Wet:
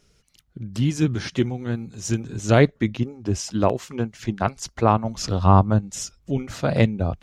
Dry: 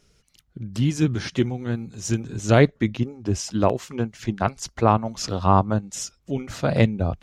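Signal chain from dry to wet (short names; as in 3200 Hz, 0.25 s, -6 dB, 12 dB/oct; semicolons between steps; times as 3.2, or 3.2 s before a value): 5.04–6.47 low shelf 140 Hz +8.5 dB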